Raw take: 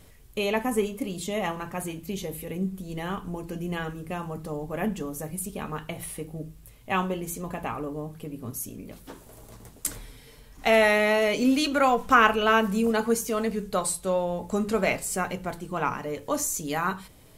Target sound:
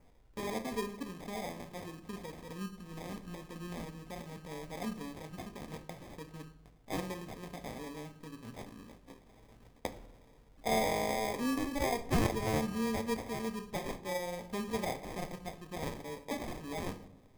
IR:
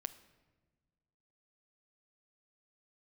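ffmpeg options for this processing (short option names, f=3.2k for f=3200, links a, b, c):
-filter_complex "[0:a]acrusher=samples=31:mix=1:aa=0.000001,adynamicequalizer=threshold=0.00282:dfrequency=3600:dqfactor=6.6:tfrequency=3600:tqfactor=6.6:attack=5:release=100:ratio=0.375:range=2.5:mode=cutabove:tftype=bell[a];[1:a]atrim=start_sample=2205,asetrate=74970,aresample=44100[b];[a][b]afir=irnorm=-1:irlink=0,volume=-4dB"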